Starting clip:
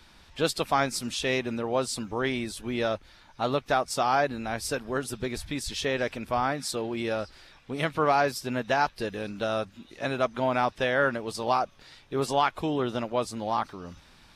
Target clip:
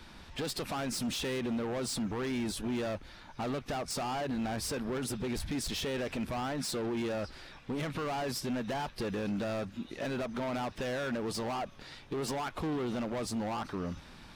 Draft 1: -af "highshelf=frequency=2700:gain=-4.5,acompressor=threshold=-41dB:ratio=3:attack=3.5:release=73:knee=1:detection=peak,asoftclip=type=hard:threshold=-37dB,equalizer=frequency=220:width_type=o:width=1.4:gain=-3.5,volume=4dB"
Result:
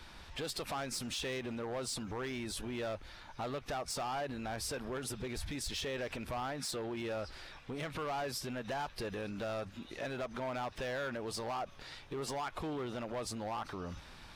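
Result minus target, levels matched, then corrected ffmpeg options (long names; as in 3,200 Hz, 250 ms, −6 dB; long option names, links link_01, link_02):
downward compressor: peak gain reduction +4.5 dB; 250 Hz band −4.0 dB
-af "highshelf=frequency=2700:gain=-4.5,acompressor=threshold=-34dB:ratio=3:attack=3.5:release=73:knee=1:detection=peak,asoftclip=type=hard:threshold=-37dB,equalizer=frequency=220:width_type=o:width=1.4:gain=3.5,volume=4dB"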